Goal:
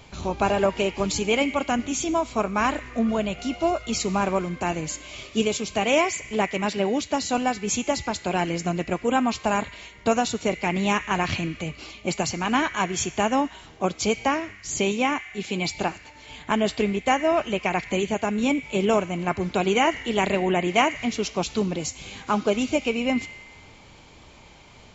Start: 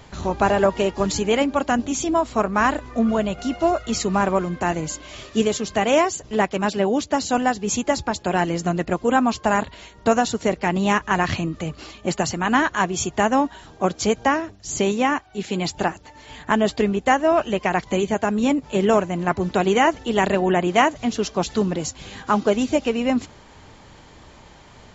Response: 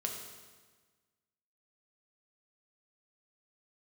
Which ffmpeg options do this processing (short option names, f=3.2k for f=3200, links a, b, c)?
-filter_complex "[0:a]asplit=2[a][b];[b]highpass=f=2.2k:t=q:w=7.8[c];[1:a]atrim=start_sample=2205[d];[c][d]afir=irnorm=-1:irlink=0,volume=-11.5dB[e];[a][e]amix=inputs=2:normalize=0,volume=-3.5dB"